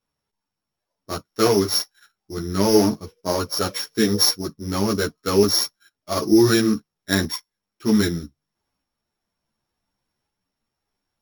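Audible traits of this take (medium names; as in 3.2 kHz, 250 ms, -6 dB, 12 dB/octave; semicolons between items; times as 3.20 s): a buzz of ramps at a fixed pitch in blocks of 8 samples; tremolo saw up 0.68 Hz, depth 35%; a shimmering, thickened sound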